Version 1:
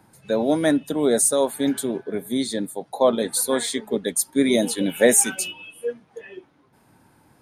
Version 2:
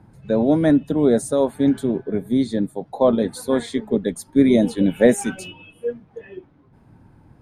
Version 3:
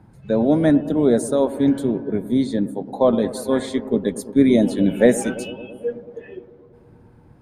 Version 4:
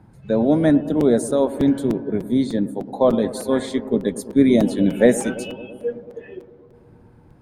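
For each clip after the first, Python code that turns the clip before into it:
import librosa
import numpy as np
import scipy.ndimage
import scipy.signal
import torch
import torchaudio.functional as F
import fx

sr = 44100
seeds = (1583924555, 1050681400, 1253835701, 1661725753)

y1 = fx.riaa(x, sr, side='playback')
y1 = F.gain(torch.from_numpy(y1), -1.0).numpy()
y2 = fx.echo_bbd(y1, sr, ms=111, stages=1024, feedback_pct=77, wet_db=-15.5)
y3 = fx.buffer_crackle(y2, sr, first_s=1.0, period_s=0.3, block=256, kind='repeat')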